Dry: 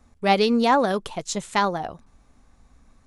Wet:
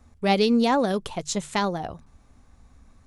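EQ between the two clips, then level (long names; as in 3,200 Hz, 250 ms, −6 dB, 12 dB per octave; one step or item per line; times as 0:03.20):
parametric band 81 Hz +6.5 dB 1.6 octaves
mains-hum notches 50/100/150 Hz
dynamic equaliser 1,200 Hz, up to −6 dB, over −31 dBFS, Q 0.74
0.0 dB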